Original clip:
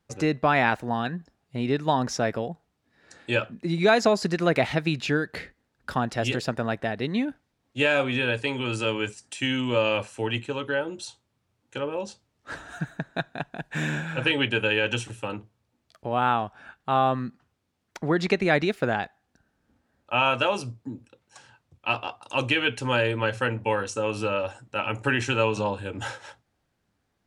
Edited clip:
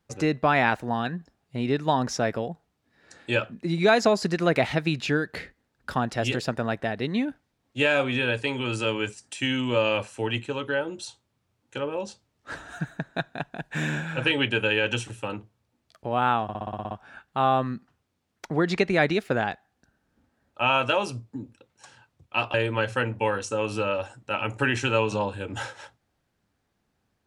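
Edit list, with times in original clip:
16.43 s: stutter 0.06 s, 9 plays
22.06–22.99 s: delete

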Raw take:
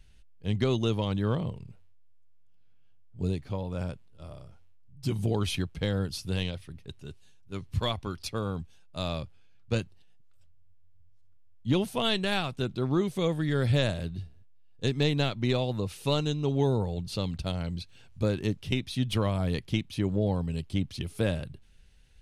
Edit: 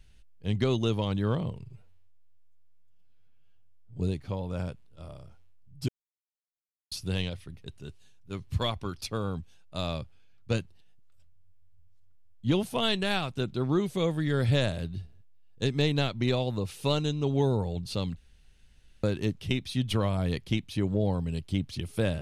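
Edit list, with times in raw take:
1.63–3.20 s: stretch 1.5×
5.10–6.13 s: mute
17.38–18.25 s: room tone

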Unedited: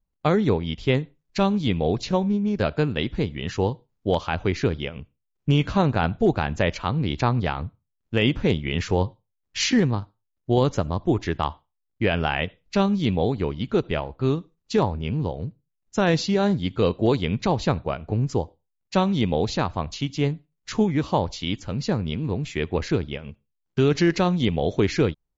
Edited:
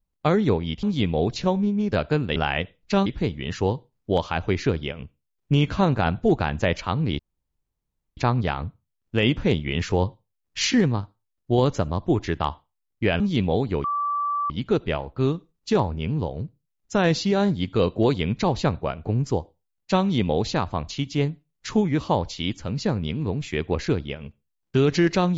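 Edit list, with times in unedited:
0.83–1.50 s: delete
7.16 s: insert room tone 0.98 s
12.19–12.89 s: move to 3.03 s
13.53 s: add tone 1.16 kHz -22 dBFS 0.66 s

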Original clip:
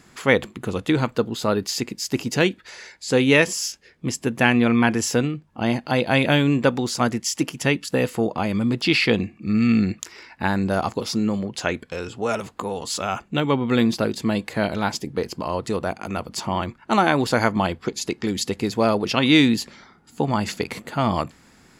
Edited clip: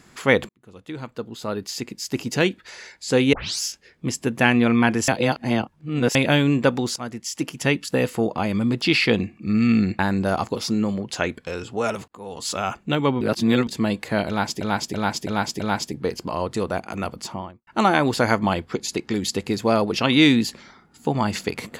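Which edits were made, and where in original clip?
0.49–2.62 s: fade in
3.33 s: tape start 0.28 s
5.08–6.15 s: reverse
6.96–7.70 s: fade in, from -14.5 dB
9.99–10.44 s: delete
12.53–12.96 s: fade in
13.66–14.12 s: reverse
14.73–15.06 s: loop, 5 plays
16.23–16.80 s: studio fade out

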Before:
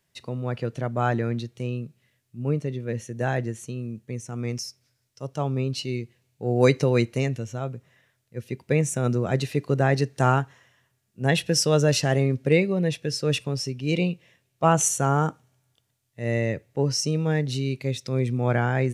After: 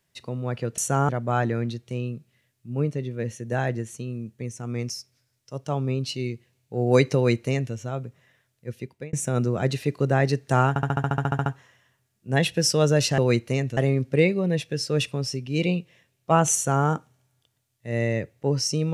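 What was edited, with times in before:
6.84–7.43 s: copy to 12.10 s
8.39–8.82 s: fade out
10.38 s: stutter 0.07 s, 12 plays
14.88–15.19 s: copy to 0.78 s

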